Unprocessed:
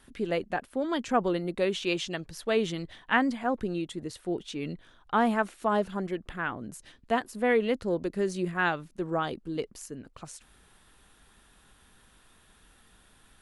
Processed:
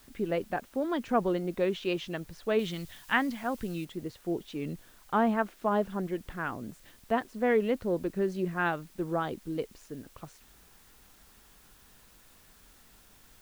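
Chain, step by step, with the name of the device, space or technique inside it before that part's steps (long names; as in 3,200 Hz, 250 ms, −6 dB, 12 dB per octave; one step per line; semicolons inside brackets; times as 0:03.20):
cassette deck with a dirty head (head-to-tape spacing loss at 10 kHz 20 dB; tape wow and flutter; white noise bed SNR 28 dB)
0:02.59–0:03.85: drawn EQ curve 160 Hz 0 dB, 390 Hz −6 dB, 3,600 Hz +6 dB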